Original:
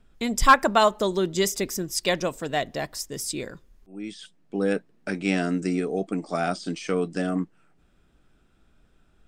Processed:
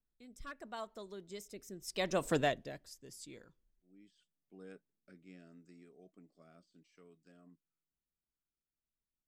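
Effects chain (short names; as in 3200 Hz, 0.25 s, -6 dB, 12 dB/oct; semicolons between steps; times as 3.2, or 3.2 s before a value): Doppler pass-by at 2.34, 15 m/s, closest 1.3 m; rotary speaker horn 0.8 Hz; gain +1 dB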